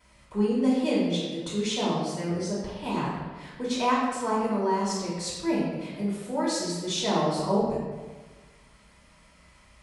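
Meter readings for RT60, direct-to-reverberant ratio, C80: 1.4 s, -8.0 dB, 2.5 dB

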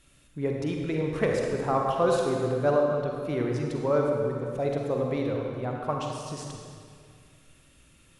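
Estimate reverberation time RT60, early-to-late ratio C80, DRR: 2.1 s, 2.5 dB, 0.0 dB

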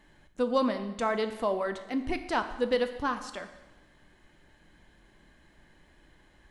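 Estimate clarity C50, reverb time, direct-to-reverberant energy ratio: 10.5 dB, 1.1 s, 8.0 dB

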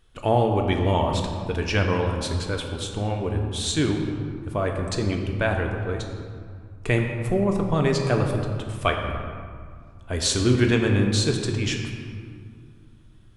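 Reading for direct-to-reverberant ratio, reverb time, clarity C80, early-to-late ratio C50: 2.0 dB, 2.3 s, 5.0 dB, 4.5 dB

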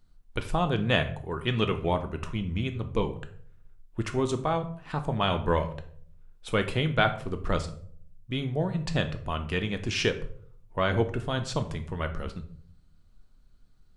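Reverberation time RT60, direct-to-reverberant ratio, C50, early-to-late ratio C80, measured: 0.55 s, 7.0 dB, 12.5 dB, 16.5 dB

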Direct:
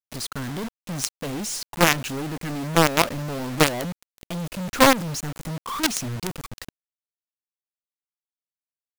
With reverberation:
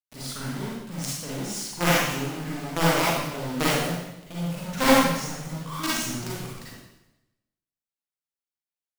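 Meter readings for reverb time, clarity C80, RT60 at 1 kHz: 0.95 s, 1.0 dB, 0.90 s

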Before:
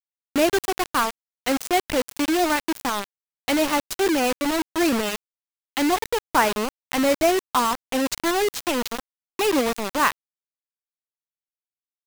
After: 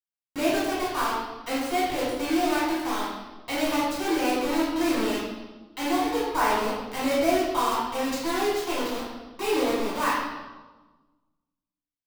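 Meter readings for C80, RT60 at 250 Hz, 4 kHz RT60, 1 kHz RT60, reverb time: 2.5 dB, 1.6 s, 1.1 s, 1.2 s, 1.2 s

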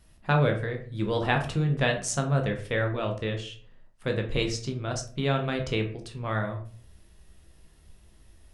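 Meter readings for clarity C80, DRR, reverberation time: 14.5 dB, 3.0 dB, 0.45 s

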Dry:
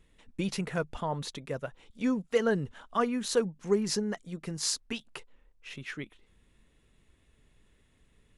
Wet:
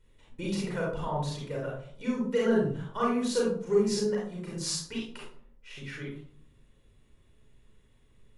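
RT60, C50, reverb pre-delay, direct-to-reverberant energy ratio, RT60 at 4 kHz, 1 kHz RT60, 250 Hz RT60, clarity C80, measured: 0.55 s, 1.0 dB, 32 ms, -4.5 dB, 0.30 s, 0.50 s, 0.85 s, 6.5 dB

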